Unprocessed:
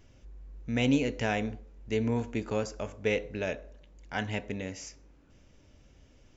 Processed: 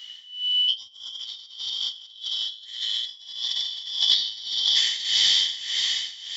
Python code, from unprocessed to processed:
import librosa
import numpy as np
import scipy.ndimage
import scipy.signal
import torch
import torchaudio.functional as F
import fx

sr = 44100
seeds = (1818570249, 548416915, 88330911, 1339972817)

y = fx.band_shuffle(x, sr, order='3412')
y = fx.tilt_eq(y, sr, slope=2.5)
y = fx.echo_feedback(y, sr, ms=809, feedback_pct=29, wet_db=-8)
y = fx.rev_plate(y, sr, seeds[0], rt60_s=4.2, hf_ratio=0.95, predelay_ms=0, drr_db=-7.0)
y = fx.over_compress(y, sr, threshold_db=-26.0, ratio=-0.5)
y = fx.graphic_eq_31(y, sr, hz=(630, 1250, 2000, 4000), db=(-10, 9, 12, 10))
y = y * (1.0 - 0.83 / 2.0 + 0.83 / 2.0 * np.cos(2.0 * np.pi * 1.7 * (np.arange(len(y)) / sr)))
y = scipy.signal.sosfilt(scipy.signal.butter(2, 46.0, 'highpass', fs=sr, output='sos'), y)
y = fx.small_body(y, sr, hz=(770.0, 1100.0, 1800.0), ring_ms=45, db=7)